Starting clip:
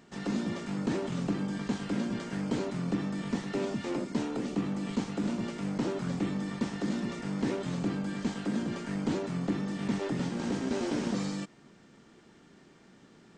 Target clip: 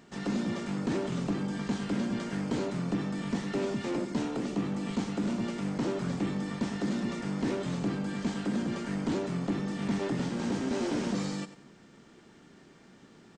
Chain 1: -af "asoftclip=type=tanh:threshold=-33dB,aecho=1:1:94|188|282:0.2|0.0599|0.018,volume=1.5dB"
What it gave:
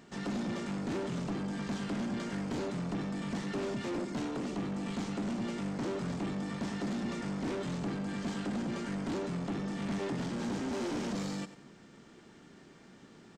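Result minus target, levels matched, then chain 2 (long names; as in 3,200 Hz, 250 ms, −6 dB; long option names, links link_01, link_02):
soft clipping: distortion +11 dB
-af "asoftclip=type=tanh:threshold=-22.5dB,aecho=1:1:94|188|282:0.2|0.0599|0.018,volume=1.5dB"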